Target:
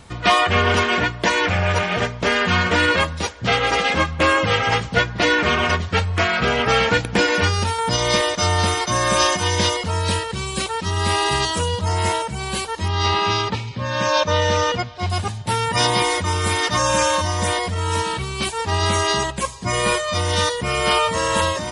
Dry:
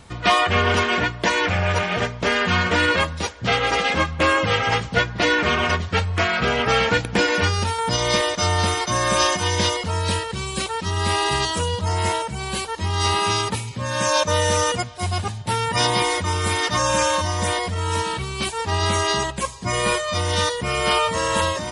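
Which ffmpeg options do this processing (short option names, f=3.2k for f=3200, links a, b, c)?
-filter_complex "[0:a]asettb=1/sr,asplit=3[a][b][c];[a]atrim=end=12.884[d];[b]atrim=start=12.88:end=15.1,asetpts=PTS-STARTPTS,afade=t=in:d=0.004:c=qsin,afade=t=out:st=2.216:d=0.004:c=qsin,lowpass=f=5.2k:w=0.5412,lowpass=f=5.2k:w=1.3066[e];[c]atrim=start=15.096[f];[d][e]acrossfade=d=0.004:c1=hsin:c2=qsin[g];[g][f]acrossfade=d=0.004:c1=qsin:c2=hsin,volume=1.5dB"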